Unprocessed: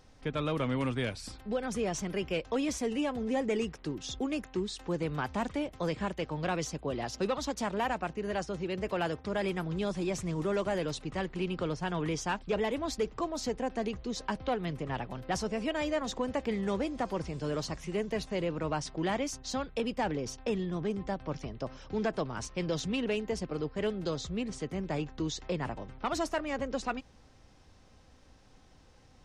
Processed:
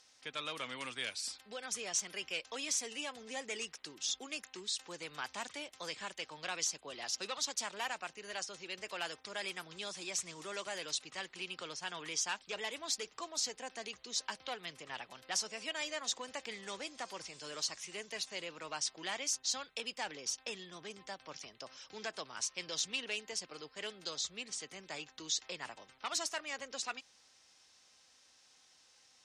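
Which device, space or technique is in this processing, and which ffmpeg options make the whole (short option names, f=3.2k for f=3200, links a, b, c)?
piezo pickup straight into a mixer: -af "lowpass=7.8k,aderivative,volume=9dB"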